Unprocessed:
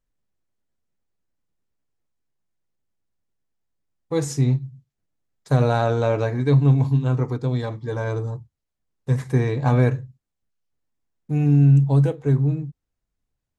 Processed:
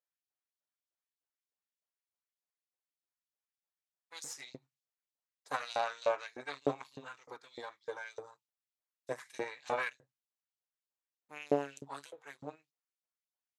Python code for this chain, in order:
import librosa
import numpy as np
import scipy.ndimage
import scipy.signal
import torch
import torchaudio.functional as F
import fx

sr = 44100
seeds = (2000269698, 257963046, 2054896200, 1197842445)

y = fx.cheby_harmonics(x, sr, harmonics=(2, 3), levels_db=(-9, -13), full_scale_db=-5.0)
y = fx.filter_lfo_highpass(y, sr, shape='saw_up', hz=3.3, low_hz=490.0, high_hz=5000.0, q=1.5)
y = F.gain(torch.from_numpy(y), -2.0).numpy()